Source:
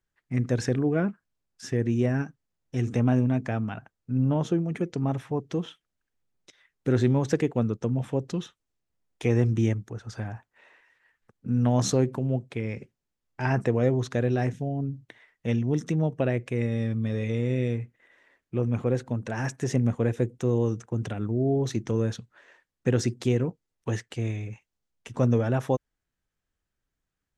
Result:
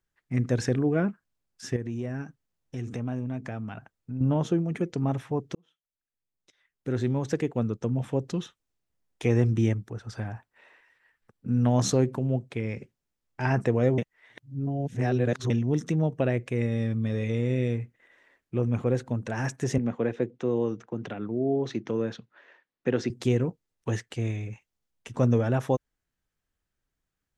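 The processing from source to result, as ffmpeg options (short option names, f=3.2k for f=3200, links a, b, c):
-filter_complex "[0:a]asettb=1/sr,asplit=3[a][b][c];[a]atrim=end=1.764[d];[b]atrim=start=1.76:end=4.21,asetpts=PTS-STARTPTS,afade=t=in:d=0.004:c=qsin,afade=t=out:st=2.446:d=0.004:c=qsin,acompressor=threshold=-35dB:ratio=2:attack=3.2:release=140:knee=1:detection=peak[e];[c]atrim=start=4.206[f];[d][e]acrossfade=d=0.004:c1=hsin:c2=qsin[g];[g][f]acrossfade=d=0.004:c1=qsin:c2=hsin,asettb=1/sr,asplit=3[h][i][j];[h]atrim=end=9.434[k];[i]atrim=start=9.43:end=11.64,asetpts=PTS-STARTPTS,afade=t=in:d=0.004:c=qsin,afade=t=out:st=2.206:d=0.004:c=qsin,bandreject=f=6.6k:w=12[l];[j]atrim=start=11.636[m];[k][l]acrossfade=d=0.004:c1=hsin:c2=qsin[n];[n][m]acrossfade=d=0.004:c1=qsin:c2=hsin,asettb=1/sr,asplit=3[o][p][q];[o]atrim=end=19.784[r];[p]atrim=start=19.78:end=23.1,asetpts=PTS-STARTPTS,afade=t=in:d=0.004:c=qsin,afade=t=out:st=3.316:d=0.004:c=qsin,acrossover=split=170 4900:gain=0.158 1 0.0631[s][t][u];[s][t][u]amix=inputs=3:normalize=0[v];[q]atrim=start=23.096[w];[r][v]acrossfade=d=0.004:c1=hsin:c2=qsin[x];[x][w]acrossfade=d=0.004:c1=qsin:c2=hsin,asplit=4[y][z][aa][ab];[y]atrim=end=5.55,asetpts=PTS-STARTPTS,afade=t=out:st=5.546:d=0.004:c=hsin[ac];[z]atrim=start=5.55:end=13.982,asetpts=PTS-STARTPTS,afade=t=in:d=2.62[ad];[aa]atrim=start=13.978:end=15.502,asetpts=PTS-STARTPTS,areverse[ae];[ab]atrim=start=15.498[af];[ac][ad]concat=n=2:v=0:a=1[ag];[ag][ae]acrossfade=d=0.004:c1=hsin:c2=hsin[ah];[ah][af]acrossfade=d=0.004:c1=hsin:c2=hsin"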